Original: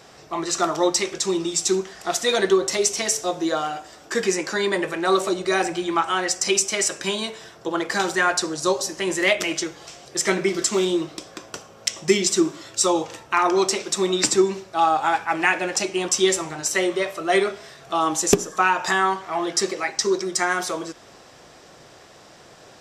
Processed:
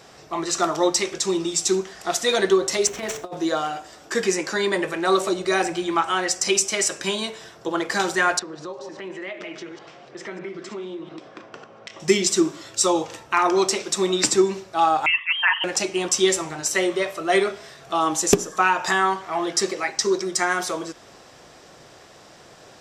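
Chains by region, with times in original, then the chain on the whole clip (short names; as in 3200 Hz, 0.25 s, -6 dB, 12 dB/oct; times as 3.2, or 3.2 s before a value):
2.87–3.37 median filter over 9 samples + high shelf 6700 Hz -10.5 dB + negative-ratio compressor -29 dBFS, ratio -0.5
8.39–12 reverse delay 0.1 s, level -9.5 dB + BPF 140–2500 Hz + compressor 3:1, threshold -34 dBFS
15.06–15.64 formant sharpening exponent 2 + inverted band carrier 3500 Hz
whole clip: dry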